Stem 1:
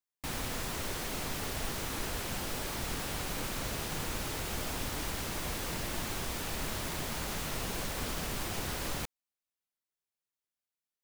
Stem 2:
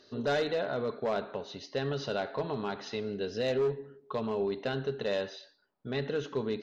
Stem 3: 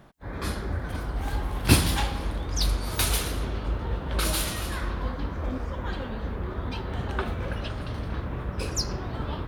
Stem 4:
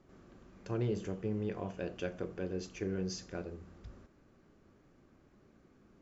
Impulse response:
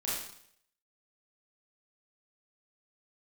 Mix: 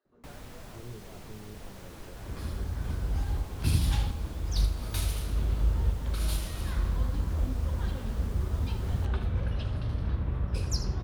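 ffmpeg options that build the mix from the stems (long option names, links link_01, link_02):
-filter_complex "[0:a]volume=-5.5dB[link_01];[1:a]bandpass=frequency=1100:width_type=q:width=1.1:csg=0,volume=-15.5dB,asplit=2[link_02][link_03];[2:a]adelay=1950,volume=2dB,asplit=3[link_04][link_05][link_06];[link_05]volume=-17dB[link_07];[link_06]volume=-11.5dB[link_08];[3:a]adelay=50,volume=-8dB[link_09];[link_03]apad=whole_len=503966[link_10];[link_04][link_10]sidechaincompress=threshold=-57dB:ratio=8:attack=10:release=342[link_11];[4:a]atrim=start_sample=2205[link_12];[link_07][link_12]afir=irnorm=-1:irlink=0[link_13];[link_08]aecho=0:1:79:1[link_14];[link_01][link_02][link_11][link_09][link_13][link_14]amix=inputs=6:normalize=0,highshelf=frequency=2300:gain=-10.5,acrossover=split=160|3000[link_15][link_16][link_17];[link_16]acompressor=threshold=-50dB:ratio=2[link_18];[link_15][link_18][link_17]amix=inputs=3:normalize=0"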